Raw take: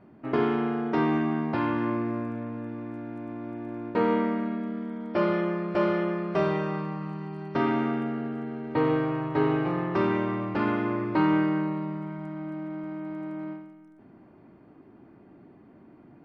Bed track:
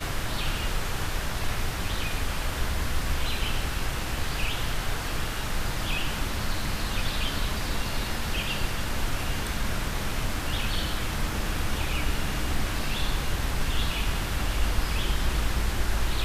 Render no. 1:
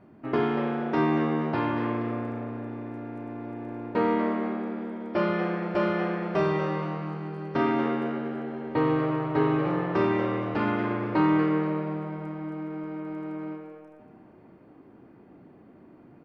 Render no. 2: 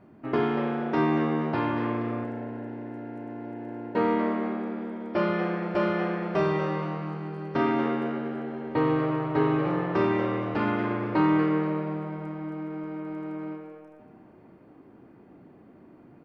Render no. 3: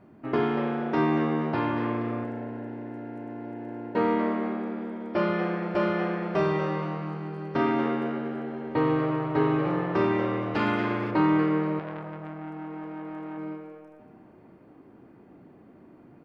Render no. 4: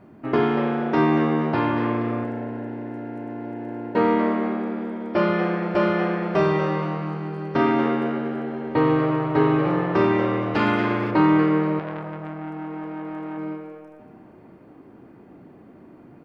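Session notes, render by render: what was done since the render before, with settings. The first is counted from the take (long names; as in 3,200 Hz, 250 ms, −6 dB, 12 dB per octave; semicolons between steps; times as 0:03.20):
double-tracking delay 33 ms −11 dB; echo with shifted repeats 235 ms, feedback 36%, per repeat +150 Hz, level −11.5 dB
0:02.24–0:03.97: notch comb filter 1,200 Hz
0:10.54–0:11.11: high-shelf EQ 2,700 Hz +10.5 dB; 0:11.79–0:13.38: saturating transformer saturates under 1,100 Hz
level +5 dB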